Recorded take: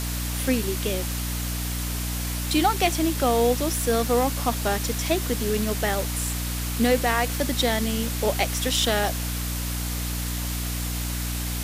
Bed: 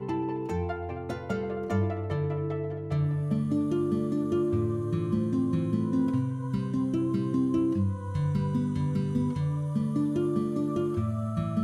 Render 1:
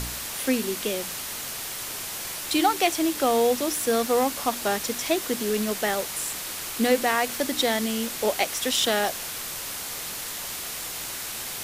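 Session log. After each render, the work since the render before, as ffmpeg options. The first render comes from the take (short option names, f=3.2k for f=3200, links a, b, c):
-af "bandreject=f=60:t=h:w=4,bandreject=f=120:t=h:w=4,bandreject=f=180:t=h:w=4,bandreject=f=240:t=h:w=4,bandreject=f=300:t=h:w=4"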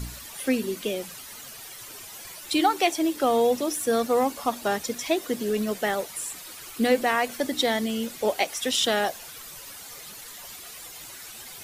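-af "afftdn=nr=12:nf=-34"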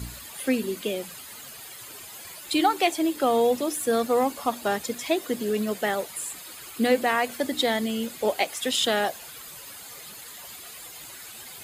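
-af "highpass=52,bandreject=f=5.7k:w=7"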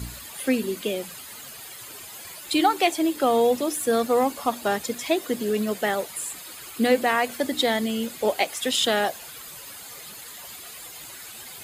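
-af "volume=1.5dB"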